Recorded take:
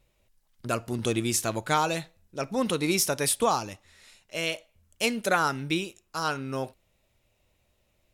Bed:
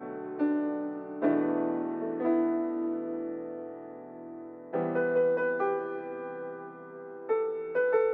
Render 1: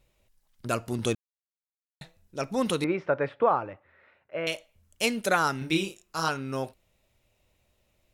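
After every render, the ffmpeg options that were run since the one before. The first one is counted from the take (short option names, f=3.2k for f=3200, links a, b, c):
-filter_complex "[0:a]asettb=1/sr,asplit=3[a][b][c];[a]atrim=end=2.844[d];[b]atrim=start=2.84:end=4.47,asetpts=PTS-STARTPTS,afade=t=in:d=0.004:c=qsin,afade=t=out:st=1.626:d=0.004:c=qsin,highpass=110,equalizer=f=210:t=q:w=4:g=-8,equalizer=f=550:t=q:w=4:g=6,equalizer=f=1.4k:t=q:w=4:g=4,lowpass=f=2k:w=0.5412,lowpass=f=2k:w=1.3066[e];[c]atrim=start=4.466[f];[d][e]acrossfade=d=0.004:c1=hsin:c2=qsin[g];[g][f]acrossfade=d=0.004:c1=qsin:c2=hsin,asettb=1/sr,asplit=3[h][i][j];[h]atrim=end=5.584[k];[i]atrim=start=5.58:end=6.29,asetpts=PTS-STARTPTS,afade=t=in:d=0.004:c=qsin,afade=t=out:st=0.706:d=0.004:c=qsin,asplit=2[l][m];[m]adelay=31,volume=-4dB[n];[l][n]amix=inputs=2:normalize=0,atrim=end_sample=31311[o];[j]atrim=start=6.286[p];[k][o]acrossfade=d=0.004:c1=hsin:c2=qsin[q];[q][p]acrossfade=d=0.004:c1=qsin:c2=hsin,asplit=3[r][s][t];[r]atrim=end=1.15,asetpts=PTS-STARTPTS,afade=t=out:st=1.146:d=0.004:c=hsin[u];[s]atrim=start=1.15:end=2.01,asetpts=PTS-STARTPTS,volume=0[v];[t]atrim=start=2.01,asetpts=PTS-STARTPTS,afade=t=in:d=0.004:c=hsin[w];[u][v][w]concat=n=3:v=0:a=1"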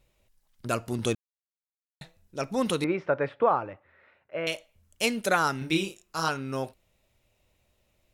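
-af anull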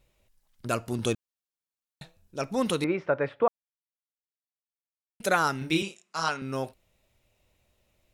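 -filter_complex "[0:a]asettb=1/sr,asplit=3[a][b][c];[a]atrim=end=0.914[d];[b]atrim=start=0.91:end=2.43,asetpts=PTS-STARTPTS,afade=t=in:d=0.004:c=qsin,afade=t=out:st=1.516:d=0.004:c=qsin,bandreject=f=2k:w=11[e];[c]atrim=start=2.426[f];[d][e]acrossfade=d=0.004:c1=hsin:c2=qsin[g];[g][f]acrossfade=d=0.004:c1=qsin:c2=hsin,asettb=1/sr,asplit=3[h][i][j];[h]atrim=end=5.824[k];[i]atrim=start=5.82:end=6.42,asetpts=PTS-STARTPTS,afade=t=in:d=0.004:c=qsin,afade=t=out:st=0.596:d=0.004:c=qsin,highpass=f=170:w=0.5412,highpass=f=170:w=1.3066,equalizer=f=320:t=q:w=4:g=-8,equalizer=f=480:t=q:w=4:g=-4,equalizer=f=2.1k:t=q:w=4:g=4,lowpass=f=9.2k:w=0.5412,lowpass=f=9.2k:w=1.3066[l];[j]atrim=start=6.416[m];[k][l]acrossfade=d=0.004:c1=hsin:c2=qsin[n];[n][m]acrossfade=d=0.004:c1=qsin:c2=hsin,asplit=3[o][p][q];[o]atrim=end=3.48,asetpts=PTS-STARTPTS,afade=t=out:st=3.476:d=0.004:c=hsin[r];[p]atrim=start=3.48:end=5.2,asetpts=PTS-STARTPTS,volume=0[s];[q]atrim=start=5.2,asetpts=PTS-STARTPTS,afade=t=in:d=0.004:c=hsin[t];[r][s][t]concat=n=3:v=0:a=1"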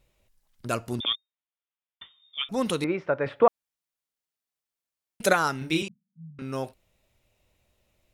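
-filter_complex "[0:a]asettb=1/sr,asplit=3[a][b][c];[a]atrim=end=1.004[d];[b]atrim=start=1:end=2.49,asetpts=PTS-STARTPTS,afade=t=in:d=0.004:c=qsin,afade=t=out:st=1.486:d=0.004:c=qsin,lowpass=f=3.1k:t=q:w=0.5098,lowpass=f=3.1k:t=q:w=0.6013,lowpass=f=3.1k:t=q:w=0.9,lowpass=f=3.1k:t=q:w=2.563,afreqshift=-3700[e];[c]atrim=start=2.486[f];[d][e]acrossfade=d=0.004:c1=hsin:c2=qsin[g];[g][f]acrossfade=d=0.004:c1=qsin:c2=hsin,asettb=1/sr,asplit=3[h][i][j];[h]atrim=end=3.264[k];[i]atrim=start=3.26:end=5.33,asetpts=PTS-STARTPTS,afade=t=in:d=0.004:c=qsin,afade=t=out:st=2.066:d=0.004:c=qsin,acontrast=34[l];[j]atrim=start=5.326[m];[k][l]acrossfade=d=0.004:c1=hsin:c2=qsin[n];[n][m]acrossfade=d=0.004:c1=qsin:c2=hsin,asettb=1/sr,asplit=3[o][p][q];[o]atrim=end=5.884[r];[p]atrim=start=5.88:end=6.39,asetpts=PTS-STARTPTS,afade=t=in:d=0.004:c=qsin,afade=t=out:st=0.506:d=0.004:c=qsin,asuperpass=centerf=160:order=20:qfactor=1.2[s];[q]atrim=start=6.386[t];[r][s]acrossfade=d=0.004:c1=hsin:c2=qsin[u];[u][t]acrossfade=d=0.004:c1=qsin:c2=hsin"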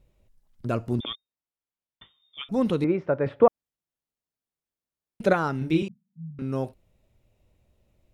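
-filter_complex "[0:a]acrossover=split=4200[a][b];[b]acompressor=threshold=-47dB:ratio=4:attack=1:release=60[c];[a][c]amix=inputs=2:normalize=0,tiltshelf=f=690:g=6.5"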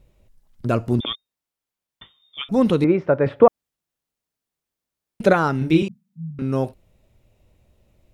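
-af "volume=6.5dB,alimiter=limit=-2dB:level=0:latency=1"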